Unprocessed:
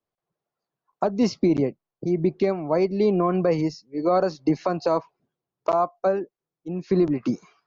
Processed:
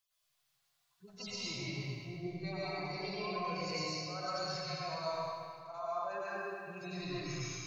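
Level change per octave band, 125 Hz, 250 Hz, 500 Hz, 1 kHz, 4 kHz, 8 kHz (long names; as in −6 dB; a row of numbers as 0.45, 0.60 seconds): −13.0 dB, −21.0 dB, −18.5 dB, −12.0 dB, +1.5 dB, can't be measured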